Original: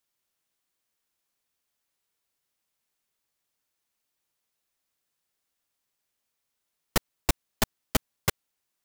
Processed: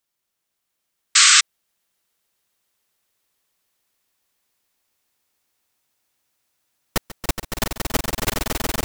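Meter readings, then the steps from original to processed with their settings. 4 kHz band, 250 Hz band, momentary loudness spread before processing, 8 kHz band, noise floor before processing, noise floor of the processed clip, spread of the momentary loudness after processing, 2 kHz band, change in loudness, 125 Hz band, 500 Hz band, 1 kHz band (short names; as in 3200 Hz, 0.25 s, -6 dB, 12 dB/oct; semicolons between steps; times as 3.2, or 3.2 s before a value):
+17.5 dB, +5.5 dB, 3 LU, +18.0 dB, -82 dBFS, -79 dBFS, 18 LU, +15.0 dB, +12.0 dB, +5.0 dB, +6.5 dB, +9.5 dB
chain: swelling echo 0.14 s, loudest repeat 8, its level -5.5 dB; painted sound noise, 1.15–1.41, 1100–8400 Hz -14 dBFS; gain +2 dB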